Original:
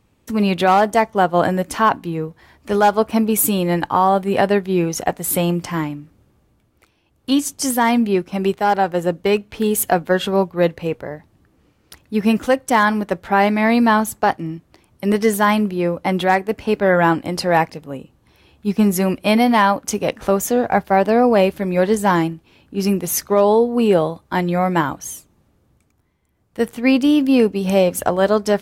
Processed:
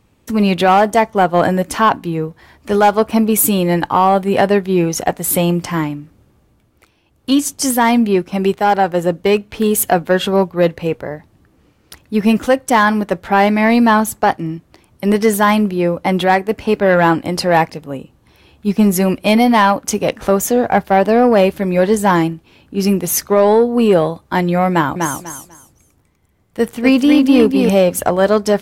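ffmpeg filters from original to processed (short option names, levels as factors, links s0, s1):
-filter_complex "[0:a]asettb=1/sr,asplit=3[s0][s1][s2];[s0]atrim=end=24.714[s3];[s1]atrim=start=24.71:end=27.69,asetpts=PTS-STARTPTS,afade=t=in:d=0.004:c=qsin,afade=t=out:st=2.976:d=0.004:c=qsin,aecho=1:1:247|494|741:0.562|0.124|0.0272,atrim=end_sample=131418[s4];[s2]atrim=start=27.686[s5];[s3][s4]acrossfade=d=0.004:c1=hsin:c2=qsin[s6];[s6][s5]acrossfade=d=0.004:c1=qsin:c2=hsin,acontrast=30,volume=0.891"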